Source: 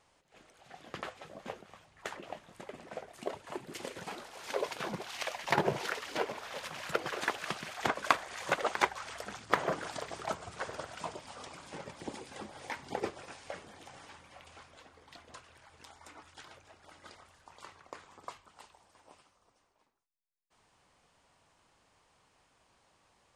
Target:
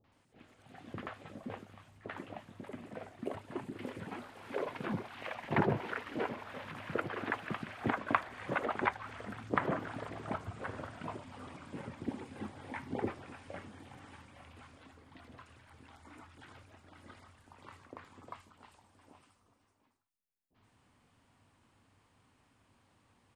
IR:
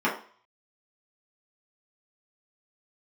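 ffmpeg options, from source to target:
-filter_complex "[0:a]acrossover=split=2800[a][b];[b]acompressor=threshold=-59dB:ratio=4:attack=1:release=60[c];[a][c]amix=inputs=2:normalize=0,equalizer=f=100:t=o:w=0.67:g=12,equalizer=f=250:t=o:w=0.67:g=10,equalizer=f=6.3k:t=o:w=0.67:g=-4,acrossover=split=610|4900[d][e][f];[e]adelay=40[g];[f]adelay=120[h];[d][g][h]amix=inputs=3:normalize=0,volume=-1.5dB"

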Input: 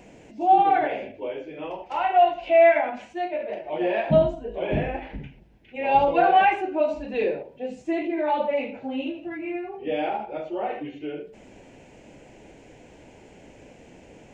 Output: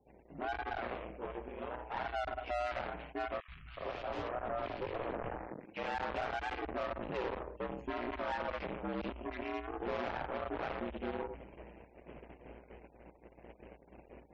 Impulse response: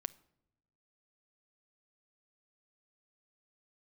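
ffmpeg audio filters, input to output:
-filter_complex "[0:a]aeval=exprs='if(lt(val(0),0),0.251*val(0),val(0))':c=same,agate=range=-21dB:threshold=-48dB:ratio=16:detection=peak,dynaudnorm=f=570:g=11:m=13.5dB[a];[1:a]atrim=start_sample=2205,atrim=end_sample=3087,asetrate=66150,aresample=44100[b];[a][b]afir=irnorm=-1:irlink=0,aeval=exprs='(tanh(282*val(0)+0.6)-tanh(0.6))/282':c=same,bass=f=250:g=-6,treble=f=4k:g=-14,aeval=exprs='val(0)*sin(2*PI*60*n/s)':c=same,highshelf=f=3.8k:g=-5,asettb=1/sr,asplit=3[c][d][e];[c]atrim=end=3.404[f];[d]atrim=start=3.4:end=5.77,asetpts=PTS-STARTPTS,afade=t=in:d=0.004:c=qsin,afade=t=out:st=2.366:d=0.004:c=qsin,acrossover=split=160|1800[g][h][i];[g]adelay=80[j];[h]adelay=370[k];[j][k][i]amix=inputs=3:normalize=0,atrim=end_sample=104517[l];[e]atrim=start=5.766[m];[f][l]acrossfade=d=0.004:c1=hsin:c2=qsin[n];[n][m]acrossfade=d=0.004:c1=qsin:c2=hsin,afftfilt=real='re*gte(hypot(re,im),0.0000891)':imag='im*gte(hypot(re,im),0.0000891)':win_size=1024:overlap=0.75,volume=18dB"

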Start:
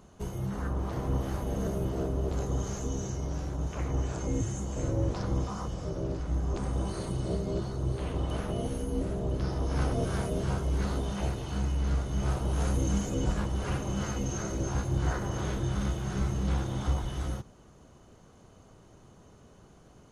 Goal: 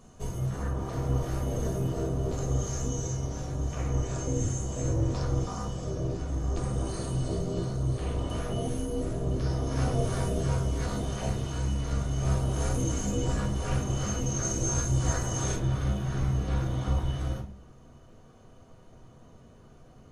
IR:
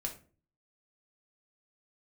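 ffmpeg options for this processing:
-filter_complex "[0:a]asetnsamples=n=441:p=0,asendcmd='14.43 equalizer g 14;15.56 equalizer g -4',equalizer=f=7.5k:w=1:g=5.5[a];[1:a]atrim=start_sample=2205[b];[a][b]afir=irnorm=-1:irlink=0"

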